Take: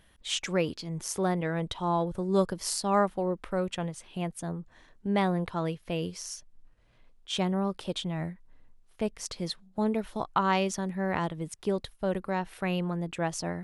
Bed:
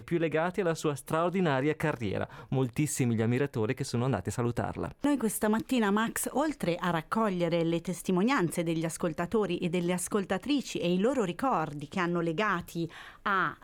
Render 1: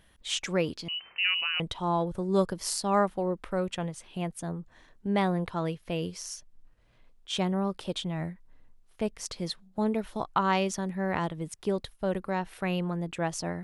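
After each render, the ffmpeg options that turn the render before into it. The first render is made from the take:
-filter_complex "[0:a]asettb=1/sr,asplit=3[a][b][c];[a]atrim=end=0.884[d];[b]atrim=start=0.88:end=1.6,asetpts=PTS-STARTPTS,afade=t=in:d=0.004:c=qsin,afade=t=out:st=0.716:d=0.004:c=qsin,lowpass=f=2.6k:t=q:w=0.5098,lowpass=f=2.6k:t=q:w=0.6013,lowpass=f=2.6k:t=q:w=0.9,lowpass=f=2.6k:t=q:w=2.563,afreqshift=-3100[e];[c]atrim=start=1.596[f];[d][e]acrossfade=d=0.004:c1=hsin:c2=qsin[g];[g][f]acrossfade=d=0.004:c1=qsin:c2=hsin"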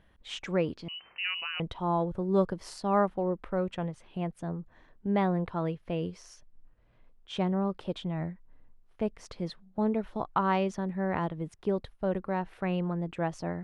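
-af "lowpass=f=4k:p=1,highshelf=f=3.1k:g=-11"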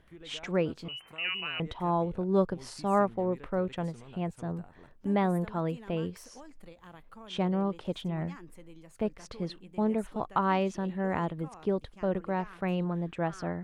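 -filter_complex "[1:a]volume=-21.5dB[a];[0:a][a]amix=inputs=2:normalize=0"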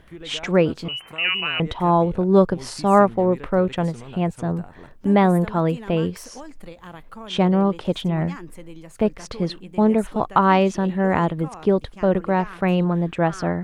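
-af "volume=11dB,alimiter=limit=-3dB:level=0:latency=1"

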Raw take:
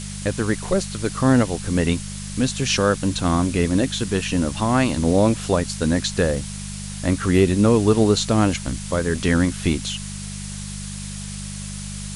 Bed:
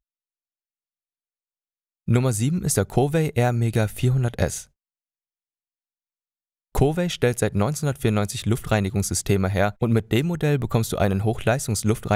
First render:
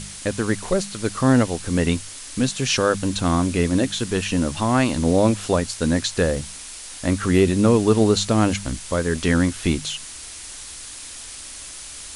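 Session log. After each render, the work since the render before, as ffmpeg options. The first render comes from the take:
-af "bandreject=f=50:t=h:w=4,bandreject=f=100:t=h:w=4,bandreject=f=150:t=h:w=4,bandreject=f=200:t=h:w=4"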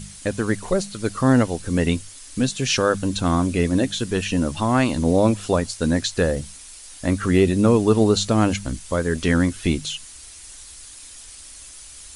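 -af "afftdn=nr=8:nf=-37"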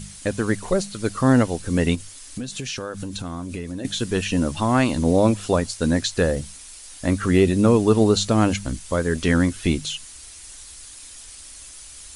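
-filter_complex "[0:a]asettb=1/sr,asplit=3[a][b][c];[a]atrim=end=1.954[d];[b]atrim=start=1.95:end=3.85,asetpts=PTS-STARTPTS,afade=t=in:d=0.004:c=qsin,afade=t=out:st=1.896:d=0.004:c=qsin,acompressor=threshold=-26dB:ratio=10:attack=3.2:release=140:knee=1:detection=peak[e];[c]atrim=start=3.846[f];[d][e]acrossfade=d=0.004:c1=hsin:c2=qsin[g];[g][f]acrossfade=d=0.004:c1=qsin:c2=hsin"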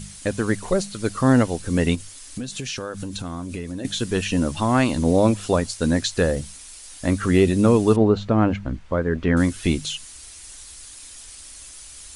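-filter_complex "[0:a]asettb=1/sr,asplit=3[a][b][c];[a]atrim=end=7.964[d];[b]atrim=start=7.96:end=9.37,asetpts=PTS-STARTPTS,afade=t=in:d=0.004:c=qsin,afade=t=out:st=1.406:d=0.004:c=qsin,lowpass=1.8k[e];[c]atrim=start=9.366[f];[d][e]acrossfade=d=0.004:c1=hsin:c2=qsin[g];[g][f]acrossfade=d=0.004:c1=qsin:c2=hsin"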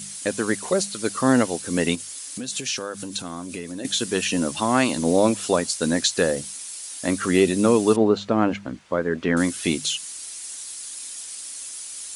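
-af "highpass=210,highshelf=f=4.3k:g=8"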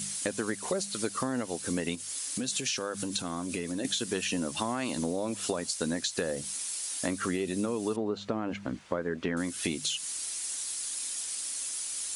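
-af "alimiter=limit=-9.5dB:level=0:latency=1:release=87,acompressor=threshold=-28dB:ratio=6"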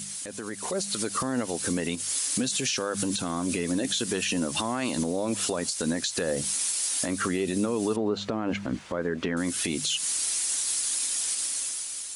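-af "alimiter=level_in=1.5dB:limit=-24dB:level=0:latency=1:release=80,volume=-1.5dB,dynaudnorm=f=130:g=11:m=8dB"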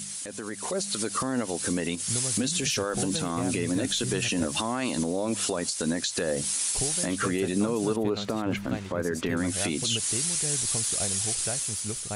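-filter_complex "[1:a]volume=-15dB[a];[0:a][a]amix=inputs=2:normalize=0"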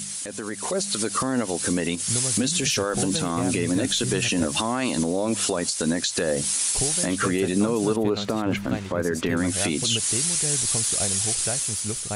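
-af "volume=4dB"

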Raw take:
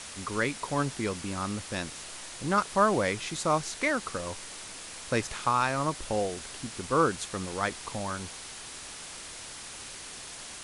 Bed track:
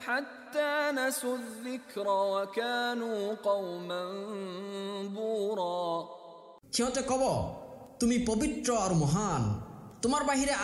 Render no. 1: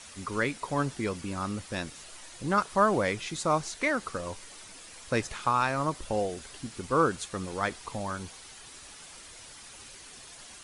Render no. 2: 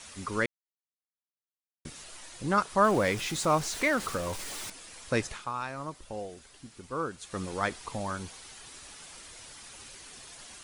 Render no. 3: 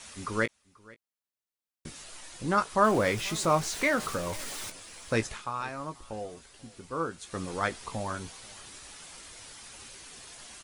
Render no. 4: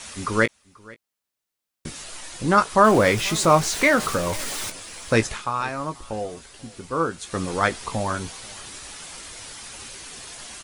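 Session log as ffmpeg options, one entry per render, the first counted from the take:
-af "afftdn=nr=8:nf=-43"
-filter_complex "[0:a]asettb=1/sr,asplit=3[a][b][c];[a]atrim=end=2.844[d];[b]atrim=start=2.84:end=4.7,asetpts=PTS-STARTPTS,afade=t=in:d=0.004:c=qsin,afade=t=out:st=1.856:d=0.004:c=qsin,aeval=exprs='val(0)+0.5*0.0158*sgn(val(0))':c=same[e];[c]atrim=start=4.696[f];[d][e]acrossfade=d=0.004:c1=hsin:c2=qsin[g];[g][f]acrossfade=d=0.004:c1=qsin:c2=hsin,asplit=5[h][i][j][k][l];[h]atrim=end=0.46,asetpts=PTS-STARTPTS,afade=t=out:st=0.456:d=0.004:c=hsin[m];[i]atrim=start=0.46:end=1.85,asetpts=PTS-STARTPTS,volume=0[n];[j]atrim=start=1.85:end=5.46,asetpts=PTS-STARTPTS,afade=t=in:d=0.004:c=hsin,afade=t=out:st=3.44:d=0.17:silence=0.354813[o];[k]atrim=start=5.46:end=7.21,asetpts=PTS-STARTPTS,volume=-9dB[p];[l]atrim=start=7.21,asetpts=PTS-STARTPTS,afade=t=in:d=0.17:silence=0.354813[q];[m][n][o][p][q]concat=n=5:v=0:a=1"
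-filter_complex "[0:a]asplit=2[a][b];[b]adelay=18,volume=-10dB[c];[a][c]amix=inputs=2:normalize=0,aecho=1:1:486:0.0668"
-af "volume=8.5dB,alimiter=limit=-3dB:level=0:latency=1"

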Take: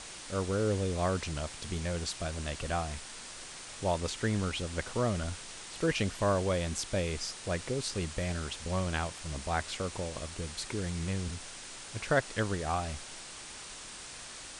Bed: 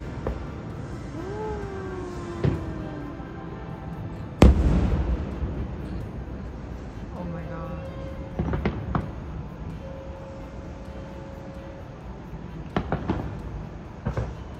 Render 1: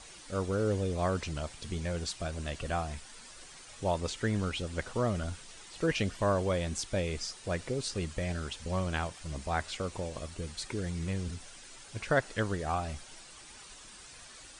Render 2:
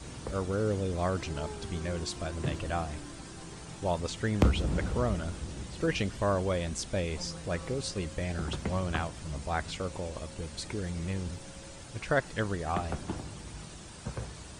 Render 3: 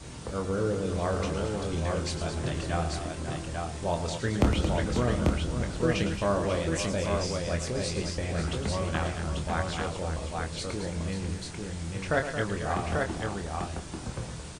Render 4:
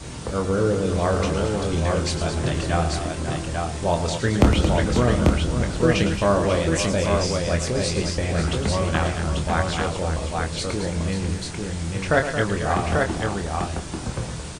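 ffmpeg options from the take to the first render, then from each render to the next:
-af "afftdn=nr=9:nf=-46"
-filter_complex "[1:a]volume=-10dB[a];[0:a][a]amix=inputs=2:normalize=0"
-filter_complex "[0:a]asplit=2[a][b];[b]adelay=25,volume=-6.5dB[c];[a][c]amix=inputs=2:normalize=0,aecho=1:1:109|223|541|841:0.316|0.335|0.299|0.668"
-af "volume=7.5dB"

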